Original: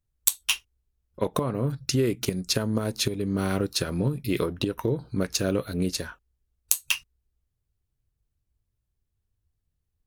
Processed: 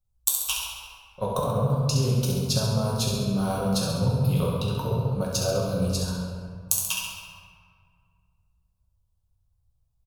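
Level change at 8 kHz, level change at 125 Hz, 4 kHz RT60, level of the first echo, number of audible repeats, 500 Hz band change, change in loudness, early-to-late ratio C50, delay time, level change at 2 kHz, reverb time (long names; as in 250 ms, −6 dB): +1.0 dB, +6.0 dB, 1.1 s, −6.5 dB, 1, +0.5 dB, +1.5 dB, −1.0 dB, 67 ms, −4.0 dB, 2.0 s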